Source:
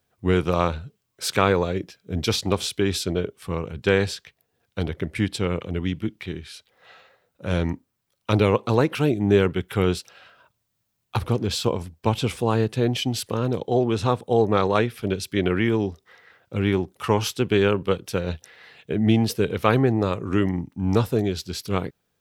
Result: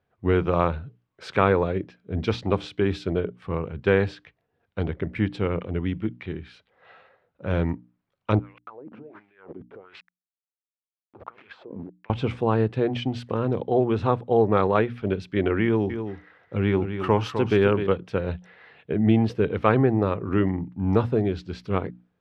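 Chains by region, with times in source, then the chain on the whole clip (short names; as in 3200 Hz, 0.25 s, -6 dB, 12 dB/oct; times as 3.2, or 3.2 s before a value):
8.39–12.1 sample gate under -33 dBFS + negative-ratio compressor -31 dBFS + wah 1.4 Hz 220–2500 Hz, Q 3.2
15.64–17.87 high shelf 7800 Hz +11 dB + echo 0.256 s -8.5 dB
whole clip: LPF 2100 Hz 12 dB/oct; notches 60/120/180/240/300 Hz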